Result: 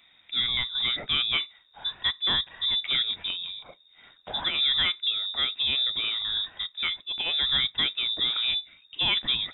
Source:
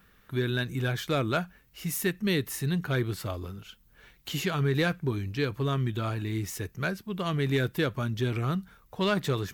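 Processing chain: inverted band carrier 3700 Hz; gain +1 dB

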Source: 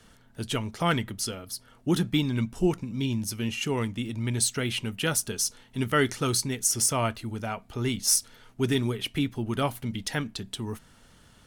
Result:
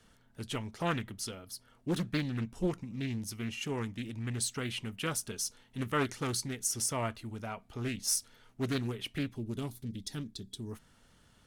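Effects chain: spectral gain 9.38–10.71, 440–3300 Hz -12 dB; Doppler distortion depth 0.44 ms; gain -7.5 dB

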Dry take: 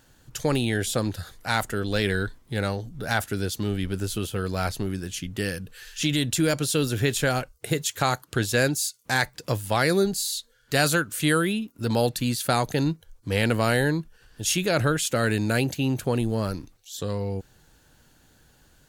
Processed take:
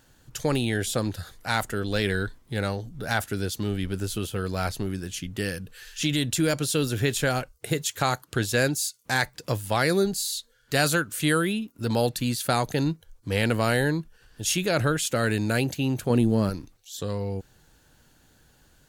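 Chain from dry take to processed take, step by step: 16.1–16.5 bell 220 Hz +7 dB 1.9 oct; gain -1 dB

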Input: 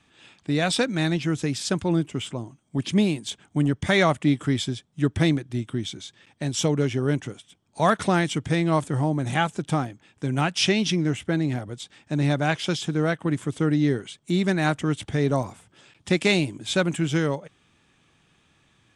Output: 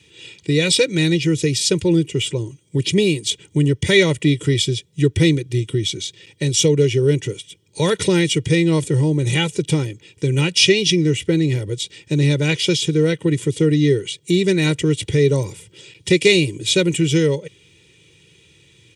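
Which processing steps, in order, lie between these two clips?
HPF 96 Hz; band shelf 990 Hz -16 dB; comb 2.1 ms, depth 84%; in parallel at +0.5 dB: compressor, threshold -29 dBFS, peak gain reduction 13.5 dB; on the sum: gain +4.5 dB

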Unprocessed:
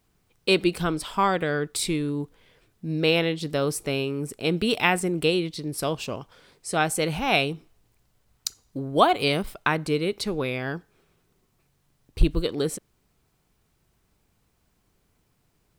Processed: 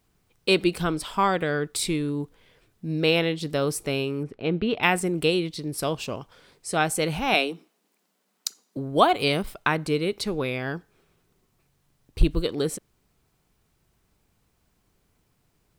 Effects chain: 4.23–4.83 air absorption 350 m; 7.34–8.77 steep high-pass 180 Hz 72 dB/oct

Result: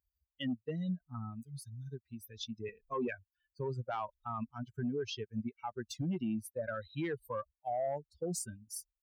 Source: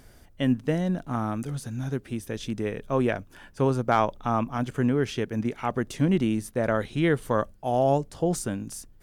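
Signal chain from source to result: per-bin expansion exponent 3; in parallel at 0 dB: compressor, threshold -45 dBFS, peak gain reduction 22 dB; 2.68–3.08 on the sum: comb 4.6 ms, depth 92%; soft clip -17 dBFS, distortion -21 dB; HPF 120 Hz 12 dB/oct; limiter -27.5 dBFS, peak gain reduction 10.5 dB; gain -1 dB

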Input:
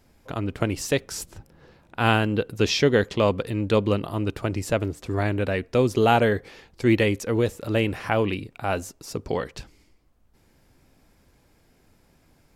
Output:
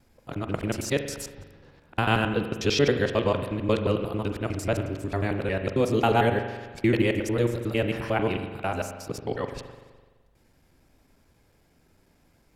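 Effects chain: local time reversal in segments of 90 ms; spring tank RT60 1.4 s, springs 42 ms, chirp 40 ms, DRR 7 dB; gain -3 dB

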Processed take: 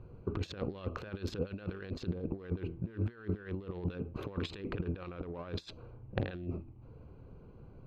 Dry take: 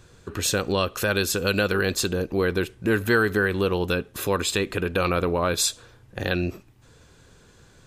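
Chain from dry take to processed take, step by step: Wiener smoothing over 25 samples; bell 620 Hz -2.5 dB 2.2 oct; de-hum 82.71 Hz, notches 4; negative-ratio compressor -32 dBFS, ratio -0.5; air absorption 260 m; gain -4 dB

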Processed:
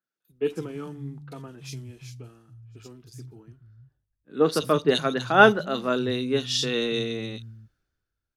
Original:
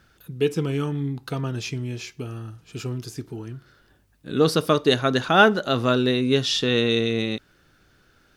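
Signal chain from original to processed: 0.46–2.5 CVSD 64 kbps; three bands offset in time mids, highs, lows 40/290 ms, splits 160/3000 Hz; three-band expander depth 70%; gain -4.5 dB

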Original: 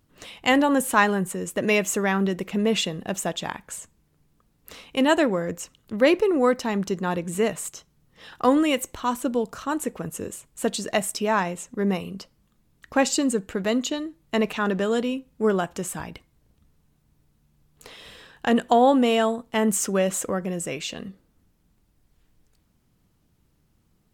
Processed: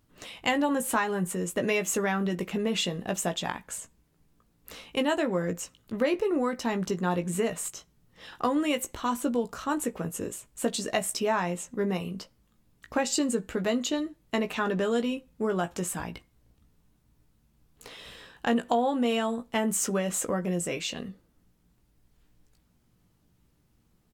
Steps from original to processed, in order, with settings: compressor 6:1, threshold -21 dBFS, peak gain reduction 9 dB; doubler 17 ms -7 dB; gain -2 dB

